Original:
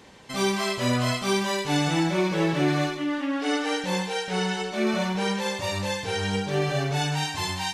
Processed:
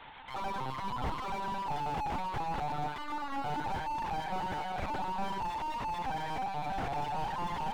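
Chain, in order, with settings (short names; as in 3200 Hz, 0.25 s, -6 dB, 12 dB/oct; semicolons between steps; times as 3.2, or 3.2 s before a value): resonant low shelf 570 Hz -12.5 dB, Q 3; LPC vocoder at 8 kHz pitch kept; slew limiter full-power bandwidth 18 Hz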